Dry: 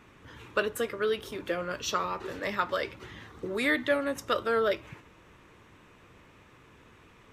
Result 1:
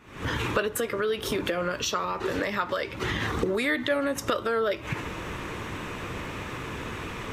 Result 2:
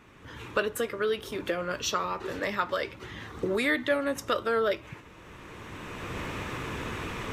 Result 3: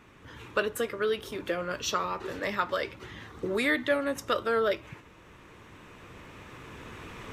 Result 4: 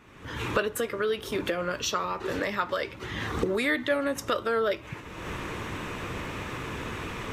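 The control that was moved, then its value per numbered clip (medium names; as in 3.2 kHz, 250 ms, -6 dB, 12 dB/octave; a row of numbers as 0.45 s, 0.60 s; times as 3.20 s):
recorder AGC, rising by: 90 dB/s, 14 dB/s, 5.4 dB/s, 37 dB/s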